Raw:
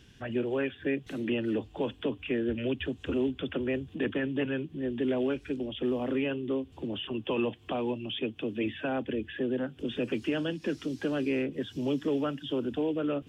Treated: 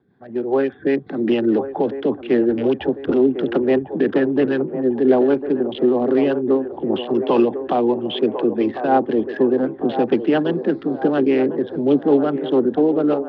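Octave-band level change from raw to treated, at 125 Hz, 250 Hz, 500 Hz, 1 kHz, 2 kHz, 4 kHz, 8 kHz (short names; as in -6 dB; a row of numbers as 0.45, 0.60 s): +6.5 dB, +12.5 dB, +14.5 dB, +17.0 dB, +6.0 dB, +4.5 dB, n/a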